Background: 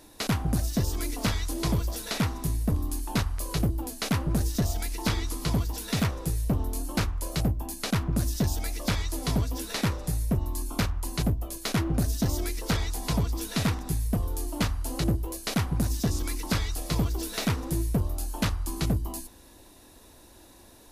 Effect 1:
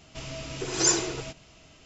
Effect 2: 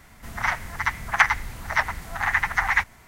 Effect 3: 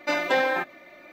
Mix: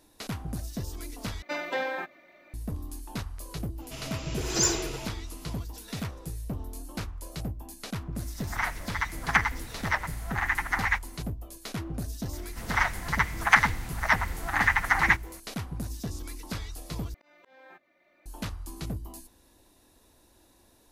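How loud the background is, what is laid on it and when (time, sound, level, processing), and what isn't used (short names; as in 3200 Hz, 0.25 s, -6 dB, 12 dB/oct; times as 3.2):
background -8.5 dB
1.42 replace with 3 -8 dB
3.76 add 1 -1.5 dB, fades 0.05 s + soft clip -11.5 dBFS
8.15 add 2 -5.5 dB
12.33 add 2 -1 dB
17.14 replace with 3 -16.5 dB + auto swell 0.708 s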